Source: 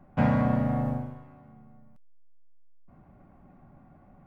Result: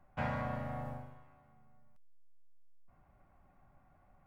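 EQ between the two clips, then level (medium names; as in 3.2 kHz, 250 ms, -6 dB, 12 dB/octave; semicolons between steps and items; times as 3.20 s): peaking EQ 230 Hz -14 dB 2.4 oct; -4.5 dB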